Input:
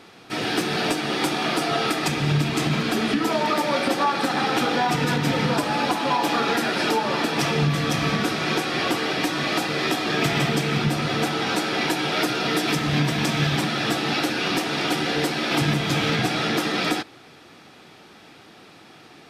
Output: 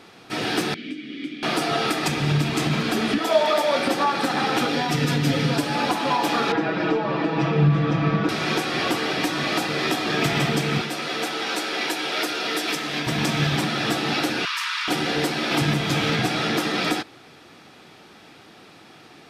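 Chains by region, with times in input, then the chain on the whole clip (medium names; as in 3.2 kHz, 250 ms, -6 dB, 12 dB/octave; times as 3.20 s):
0.74–1.43 s: vowel filter i + tone controls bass +4 dB, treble +1 dB
3.18–3.76 s: high-pass 500 Hz 6 dB/octave + small resonant body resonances 630/3400 Hz, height 11 dB, ringing for 30 ms
4.67–5.75 s: peaking EQ 970 Hz -7.5 dB 0.93 oct + comb 7.2 ms, depth 47%
6.52–8.29 s: tape spacing loss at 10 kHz 34 dB + comb 6.2 ms, depth 93%
10.81–13.07 s: high-pass 370 Hz + peaking EQ 870 Hz -3.5 dB 1.5 oct
14.45–14.88 s: steep high-pass 960 Hz 96 dB/octave + treble shelf 6.8 kHz -7 dB + level flattener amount 100%
whole clip: none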